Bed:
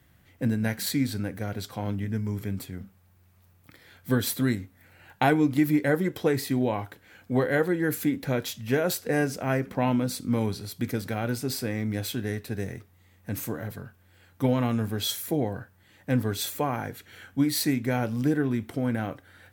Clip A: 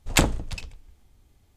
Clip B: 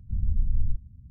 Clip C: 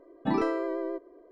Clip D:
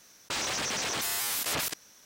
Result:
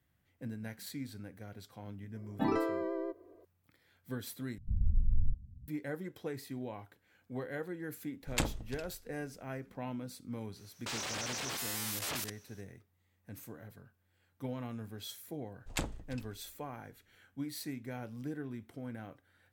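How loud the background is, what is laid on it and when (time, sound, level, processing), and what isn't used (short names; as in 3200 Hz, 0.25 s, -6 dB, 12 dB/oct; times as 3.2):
bed -16 dB
2.14 add C -4.5 dB
4.58 replace with B -4.5 dB
8.21 add A -13 dB
10.56 add D -7.5 dB
15.6 add A -16.5 dB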